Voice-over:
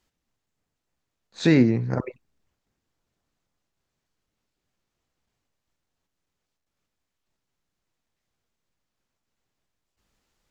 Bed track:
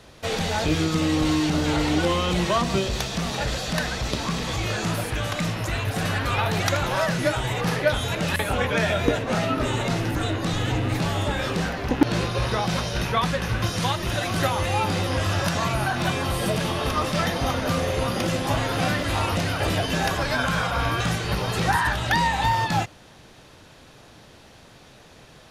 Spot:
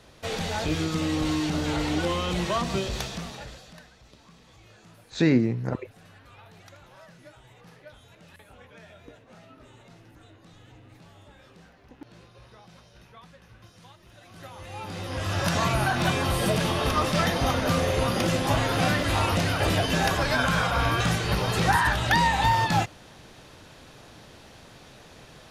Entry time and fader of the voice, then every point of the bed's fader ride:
3.75 s, -3.0 dB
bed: 3.05 s -4.5 dB
3.93 s -27 dB
14.13 s -27 dB
15.54 s 0 dB

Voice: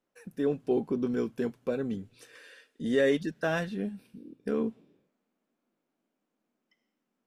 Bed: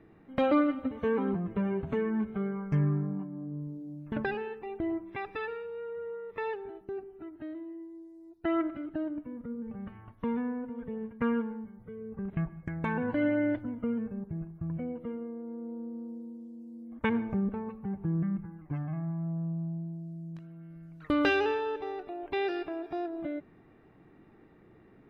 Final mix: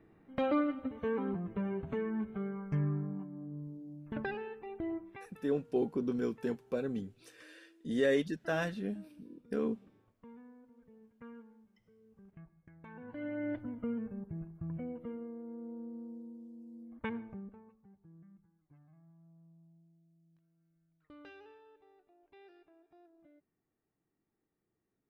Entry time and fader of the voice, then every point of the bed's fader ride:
5.05 s, -4.0 dB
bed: 5.05 s -5.5 dB
5.38 s -22 dB
12.82 s -22 dB
13.62 s -5 dB
16.84 s -5 dB
18 s -28 dB

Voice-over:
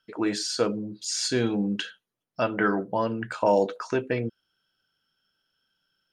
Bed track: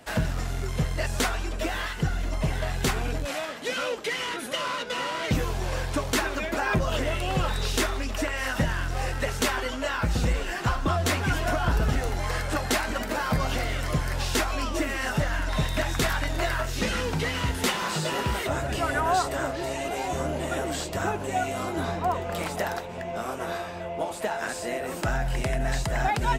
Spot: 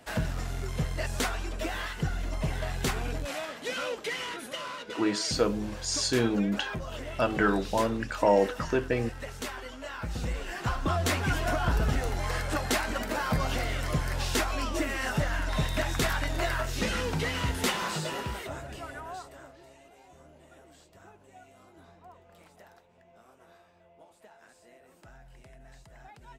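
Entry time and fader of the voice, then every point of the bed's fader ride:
4.80 s, -1.0 dB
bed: 4.13 s -4 dB
5.09 s -11.5 dB
9.81 s -11.5 dB
10.97 s -2.5 dB
17.81 s -2.5 dB
19.93 s -26 dB

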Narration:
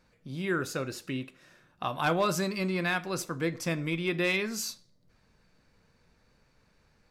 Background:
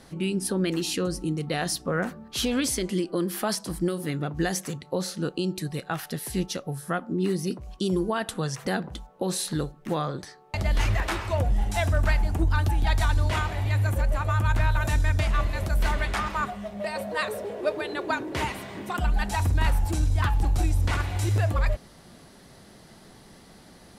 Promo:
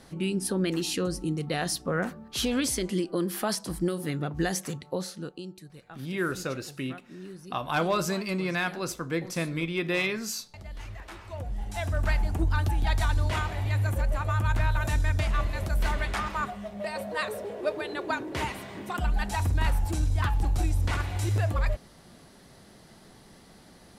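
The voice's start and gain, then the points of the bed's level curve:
5.70 s, +0.5 dB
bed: 4.87 s -1.5 dB
5.68 s -17 dB
10.98 s -17 dB
12.15 s -2.5 dB

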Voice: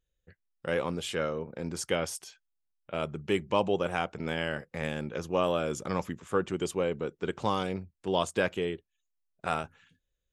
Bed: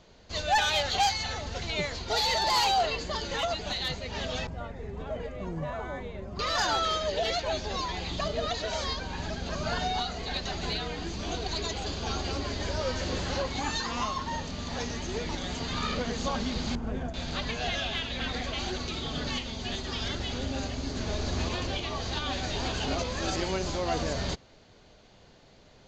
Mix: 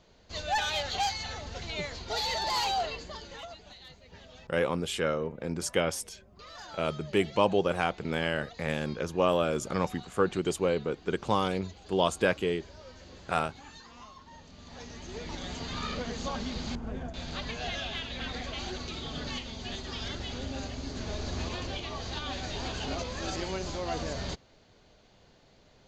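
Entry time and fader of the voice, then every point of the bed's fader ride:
3.85 s, +2.0 dB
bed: 2.79 s -4.5 dB
3.77 s -18.5 dB
14.26 s -18.5 dB
15.42 s -4 dB

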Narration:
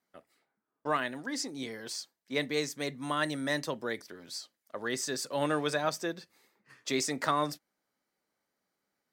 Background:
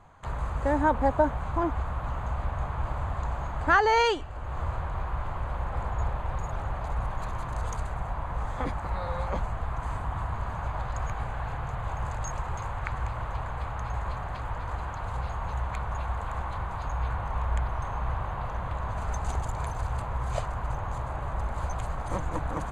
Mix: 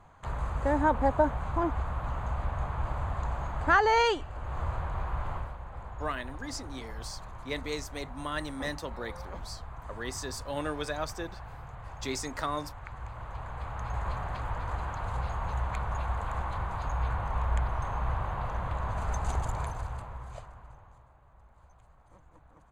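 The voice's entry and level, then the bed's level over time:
5.15 s, -4.0 dB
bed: 5.36 s -1.5 dB
5.57 s -11 dB
12.87 s -11 dB
14.09 s -0.5 dB
19.55 s -0.5 dB
21.18 s -27 dB

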